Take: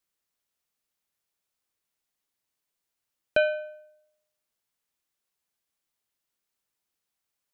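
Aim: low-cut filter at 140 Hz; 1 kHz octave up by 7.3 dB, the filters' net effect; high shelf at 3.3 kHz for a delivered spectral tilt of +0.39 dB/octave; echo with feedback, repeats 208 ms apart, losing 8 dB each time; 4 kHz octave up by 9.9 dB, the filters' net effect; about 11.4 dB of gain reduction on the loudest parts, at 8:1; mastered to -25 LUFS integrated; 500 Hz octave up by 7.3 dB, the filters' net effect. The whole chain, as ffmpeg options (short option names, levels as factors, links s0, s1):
-af "highpass=140,equalizer=f=500:t=o:g=6,equalizer=f=1000:t=o:g=7.5,highshelf=f=3300:g=7.5,equalizer=f=4000:t=o:g=8,acompressor=threshold=0.0794:ratio=8,aecho=1:1:208|416|624|832|1040:0.398|0.159|0.0637|0.0255|0.0102,volume=1.88"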